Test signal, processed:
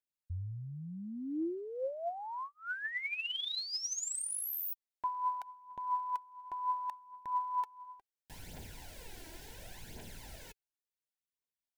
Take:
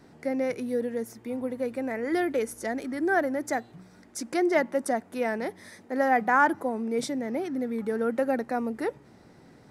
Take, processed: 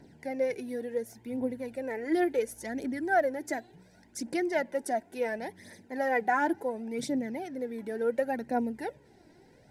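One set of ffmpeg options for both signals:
-af "asuperstop=centerf=1200:order=4:qfactor=3,aphaser=in_gain=1:out_gain=1:delay=3.2:decay=0.54:speed=0.7:type=triangular,volume=-5dB"

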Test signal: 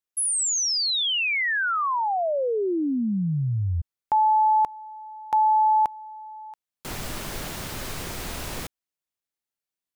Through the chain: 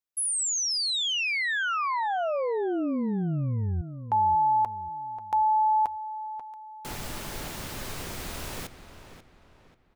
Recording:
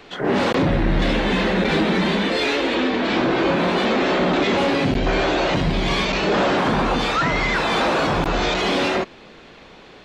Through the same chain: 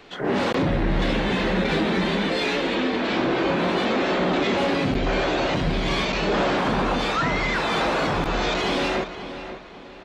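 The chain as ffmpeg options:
-filter_complex "[0:a]asplit=2[a][b];[b]adelay=538,lowpass=f=3.5k:p=1,volume=-11dB,asplit=2[c][d];[d]adelay=538,lowpass=f=3.5k:p=1,volume=0.38,asplit=2[e][f];[f]adelay=538,lowpass=f=3.5k:p=1,volume=0.38,asplit=2[g][h];[h]adelay=538,lowpass=f=3.5k:p=1,volume=0.38[i];[a][c][e][g][i]amix=inputs=5:normalize=0,volume=-3.5dB"

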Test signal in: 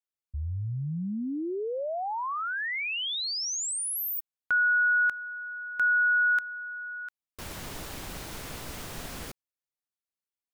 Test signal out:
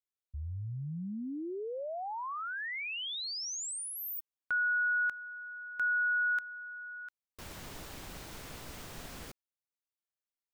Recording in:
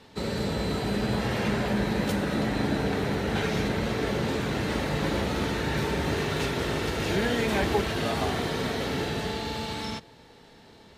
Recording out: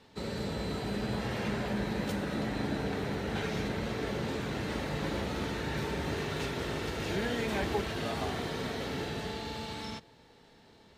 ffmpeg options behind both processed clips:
-af "equalizer=f=11k:w=2.4:g=-3,volume=-6.5dB"

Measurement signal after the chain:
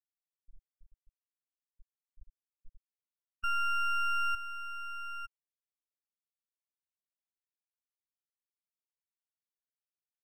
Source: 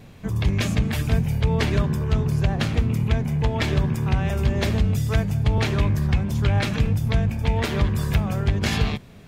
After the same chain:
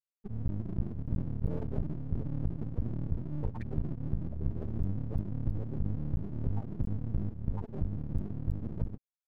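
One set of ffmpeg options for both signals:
-af "afftfilt=real='re*gte(hypot(re,im),0.316)':imag='im*gte(hypot(re,im),0.316)':win_size=1024:overlap=0.75,aeval=exprs='max(val(0),0)':c=same,volume=-8dB"

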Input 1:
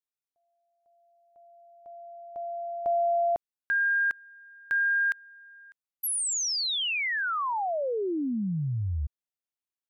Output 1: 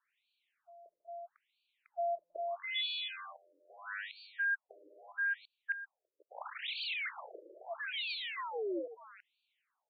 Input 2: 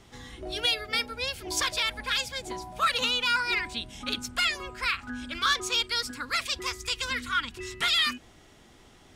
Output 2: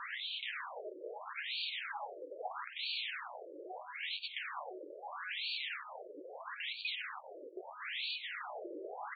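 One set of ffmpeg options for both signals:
-filter_complex "[0:a]lowshelf=f=84:g=-5,asplit=2[a][b];[b]highpass=f=720:p=1,volume=10dB,asoftclip=type=tanh:threshold=-15dB[c];[a][c]amix=inputs=2:normalize=0,lowpass=f=2.4k:p=1,volume=-6dB,aresample=16000,aeval=exprs='(mod(44.7*val(0)+1,2)-1)/44.7':c=same,aresample=44100,highshelf=f=4.4k:g=6,acompressor=threshold=-48dB:ratio=6:attack=0.44:release=166:knee=1:detection=peak,asplit=2[d][e];[e]aecho=0:1:331:0.266[f];[d][f]amix=inputs=2:normalize=0,afftfilt=real='re*between(b*sr/1024,420*pow(3300/420,0.5+0.5*sin(2*PI*0.77*pts/sr))/1.41,420*pow(3300/420,0.5+0.5*sin(2*PI*0.77*pts/sr))*1.41)':imag='im*between(b*sr/1024,420*pow(3300/420,0.5+0.5*sin(2*PI*0.77*pts/sr))/1.41,420*pow(3300/420,0.5+0.5*sin(2*PI*0.77*pts/sr))*1.41)':win_size=1024:overlap=0.75,volume=18dB"

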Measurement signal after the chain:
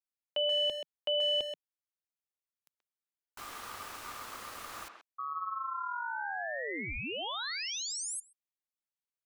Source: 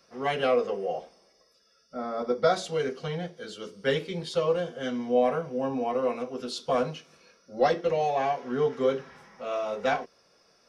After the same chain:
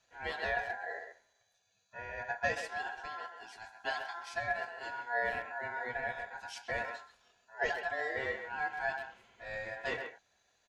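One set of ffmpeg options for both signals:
-filter_complex "[0:a]aeval=exprs='val(0)*sin(2*PI*1200*n/s)':c=same,equalizer=f=160:t=o:w=0.25:g=-12.5,asplit=2[a][b];[b]adelay=130,highpass=300,lowpass=3.4k,asoftclip=type=hard:threshold=-19.5dB,volume=-7dB[c];[a][c]amix=inputs=2:normalize=0,volume=-8dB"

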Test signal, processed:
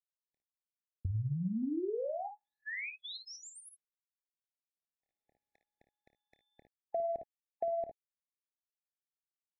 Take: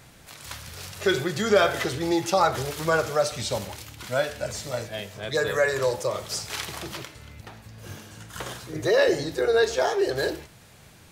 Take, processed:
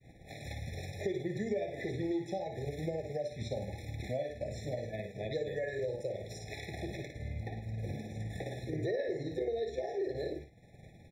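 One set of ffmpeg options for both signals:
-af "acontrast=57,aecho=1:1:27|56|73:0.211|0.422|0.168,tremolo=f=19:d=0.31,acompressor=threshold=-34dB:ratio=4,agate=range=-33dB:threshold=-38dB:ratio=3:detection=peak,lowpass=f=1.4k:p=1,adynamicequalizer=threshold=0.00398:dfrequency=780:dqfactor=1.7:tfrequency=780:tqfactor=1.7:attack=5:release=100:ratio=0.375:range=2.5:mode=cutabove:tftype=bell,afftfilt=real='re*eq(mod(floor(b*sr/1024/850),2),0)':imag='im*eq(mod(floor(b*sr/1024/850),2),0)':win_size=1024:overlap=0.75"

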